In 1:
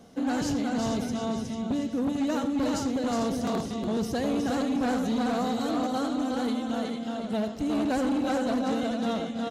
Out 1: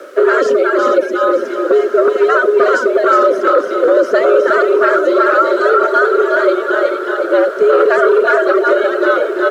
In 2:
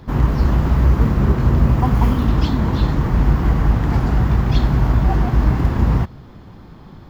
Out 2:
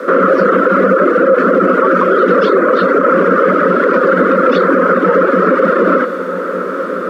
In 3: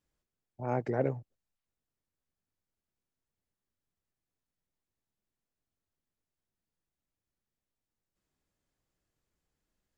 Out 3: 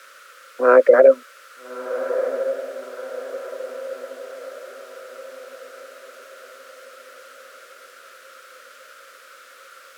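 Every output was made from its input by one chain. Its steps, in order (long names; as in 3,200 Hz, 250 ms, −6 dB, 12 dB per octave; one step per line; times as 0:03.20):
reverb reduction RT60 1.1 s
in parallel at −2 dB: downward compressor, threshold −23 dBFS
on the sum: background noise blue −46 dBFS
pair of resonant band-passes 700 Hz, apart 1.6 octaves
frequency shifter +130 Hz
on a send: feedback delay with all-pass diffusion 1,313 ms, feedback 48%, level −13 dB
on the sum: boost into a limiter +28.5 dB
level −1 dB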